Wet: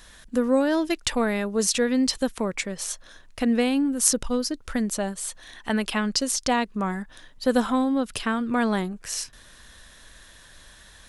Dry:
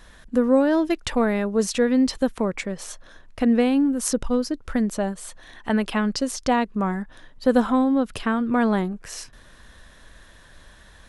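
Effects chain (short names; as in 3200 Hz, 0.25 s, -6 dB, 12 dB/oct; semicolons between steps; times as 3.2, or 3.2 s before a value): high shelf 2500 Hz +11 dB; gain -3.5 dB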